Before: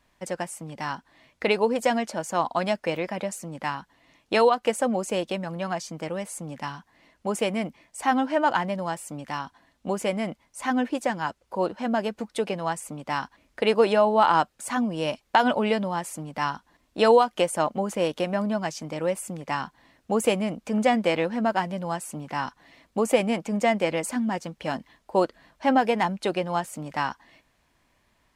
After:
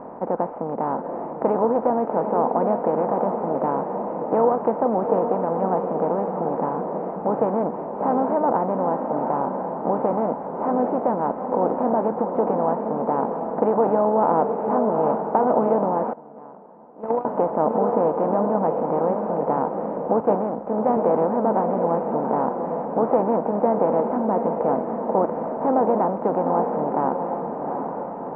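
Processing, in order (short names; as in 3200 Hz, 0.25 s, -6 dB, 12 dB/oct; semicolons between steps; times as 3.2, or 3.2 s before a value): per-bin compression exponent 0.4; LPF 1000 Hz 24 dB/oct; diffused feedback echo 0.774 s, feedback 58%, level -6 dB; 16.13–17.25 gate -11 dBFS, range -20 dB; 20.2–20.97 three-band expander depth 100%; gain -3.5 dB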